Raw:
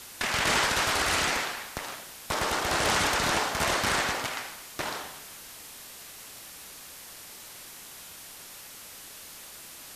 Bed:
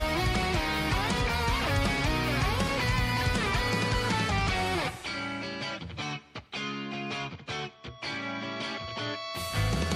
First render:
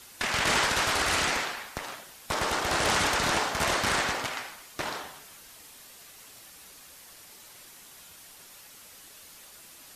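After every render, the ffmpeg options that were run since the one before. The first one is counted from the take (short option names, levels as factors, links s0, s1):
-af "afftdn=nr=6:nf=-46"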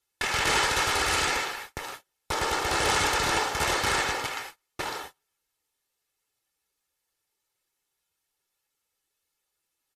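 -af "agate=range=0.0251:threshold=0.01:ratio=16:detection=peak,aecho=1:1:2.3:0.46"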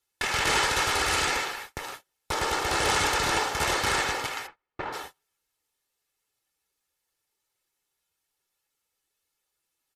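-filter_complex "[0:a]asplit=3[s0][s1][s2];[s0]afade=t=out:st=4.46:d=0.02[s3];[s1]lowpass=1900,afade=t=in:st=4.46:d=0.02,afade=t=out:st=4.92:d=0.02[s4];[s2]afade=t=in:st=4.92:d=0.02[s5];[s3][s4][s5]amix=inputs=3:normalize=0"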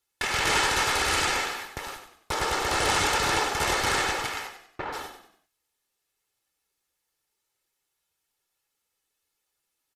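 -filter_complex "[0:a]asplit=5[s0][s1][s2][s3][s4];[s1]adelay=95,afreqshift=-31,volume=0.376[s5];[s2]adelay=190,afreqshift=-62,volume=0.146[s6];[s3]adelay=285,afreqshift=-93,volume=0.0569[s7];[s4]adelay=380,afreqshift=-124,volume=0.0224[s8];[s0][s5][s6][s7][s8]amix=inputs=5:normalize=0"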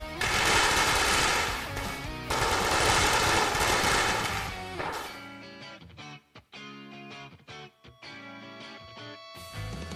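-filter_complex "[1:a]volume=0.335[s0];[0:a][s0]amix=inputs=2:normalize=0"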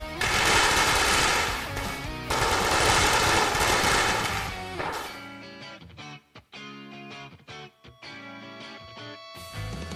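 -af "volume=1.33"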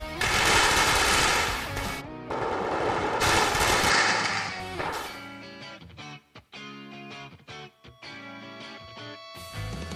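-filter_complex "[0:a]asplit=3[s0][s1][s2];[s0]afade=t=out:st=2:d=0.02[s3];[s1]bandpass=f=400:t=q:w=0.65,afade=t=in:st=2:d=0.02,afade=t=out:st=3.2:d=0.02[s4];[s2]afade=t=in:st=3.2:d=0.02[s5];[s3][s4][s5]amix=inputs=3:normalize=0,asettb=1/sr,asplit=3[s6][s7][s8];[s6]atrim=end=3.904[s9];[s7]atrim=start=3.9:end=4.6,asetpts=PTS-STARTPTS,afade=t=in:d=0.004:c=qsin,afade=t=out:st=0.696:d=0.004:c=qsin,highpass=f=110:w=0.5412,highpass=f=110:w=1.3066,equalizer=f=130:t=q:w=4:g=-7,equalizer=f=400:t=q:w=4:g=-4,equalizer=f=1900:t=q:w=4:g=5,equalizer=f=3400:t=q:w=4:g=-5,equalizer=f=4800:t=q:w=4:g=7,lowpass=f=8100:w=0.5412,lowpass=f=8100:w=1.3066[s10];[s8]atrim=start=4.596[s11];[s9][s10]acrossfade=d=0.004:c1=hsin:c2=qsin[s12];[s12][s11]acrossfade=d=0.004:c1=qsin:c2=hsin"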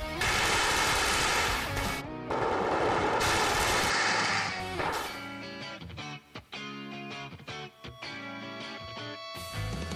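-af "alimiter=limit=0.119:level=0:latency=1:release=10,acompressor=mode=upward:threshold=0.0178:ratio=2.5"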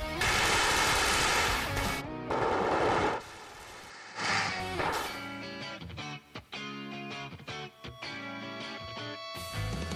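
-filter_complex "[0:a]asplit=3[s0][s1][s2];[s0]atrim=end=3.22,asetpts=PTS-STARTPTS,afade=t=out:st=3.07:d=0.15:silence=0.1[s3];[s1]atrim=start=3.22:end=4.15,asetpts=PTS-STARTPTS,volume=0.1[s4];[s2]atrim=start=4.15,asetpts=PTS-STARTPTS,afade=t=in:d=0.15:silence=0.1[s5];[s3][s4][s5]concat=n=3:v=0:a=1"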